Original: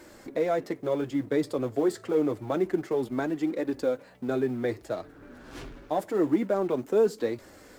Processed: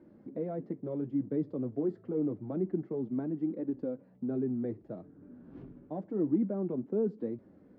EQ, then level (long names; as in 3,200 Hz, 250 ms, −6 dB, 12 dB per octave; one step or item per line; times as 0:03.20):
resonant band-pass 190 Hz, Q 1.9
high-frequency loss of the air 130 metres
+2.5 dB